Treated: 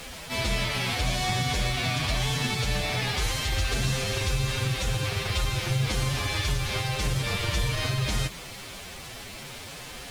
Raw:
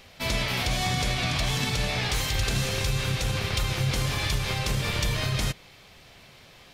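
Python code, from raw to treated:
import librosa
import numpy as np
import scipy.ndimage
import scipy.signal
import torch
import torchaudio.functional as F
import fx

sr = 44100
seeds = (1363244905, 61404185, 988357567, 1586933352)

y = fx.delta_mod(x, sr, bps=64000, step_db=-34.5)
y = fx.dmg_noise_colour(y, sr, seeds[0], colour='pink', level_db=-48.0)
y = fx.stretch_vocoder(y, sr, factor=1.5)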